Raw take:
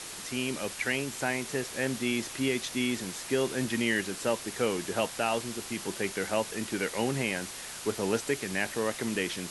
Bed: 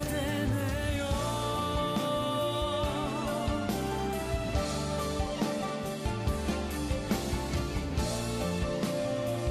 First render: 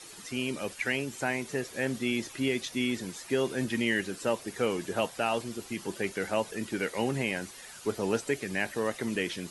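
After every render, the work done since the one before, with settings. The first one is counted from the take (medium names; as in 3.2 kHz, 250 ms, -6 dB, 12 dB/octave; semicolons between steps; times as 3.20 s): noise reduction 11 dB, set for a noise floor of -42 dBFS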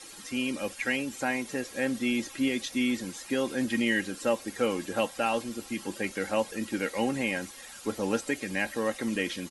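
comb 3.7 ms, depth 55%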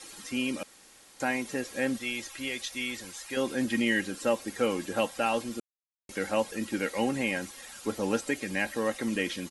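0.63–1.20 s: room tone; 1.97–3.37 s: peaking EQ 230 Hz -13 dB 1.8 oct; 5.60–6.09 s: mute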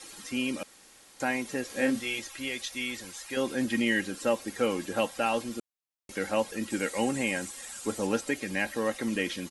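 1.67–2.19 s: doubling 27 ms -3 dB; 6.70–8.07 s: peaking EQ 8 kHz +9.5 dB 0.5 oct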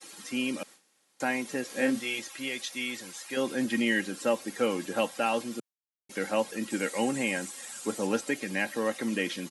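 high-pass 130 Hz 24 dB/octave; expander -45 dBFS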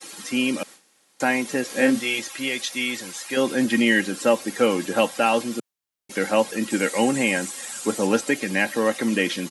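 trim +8 dB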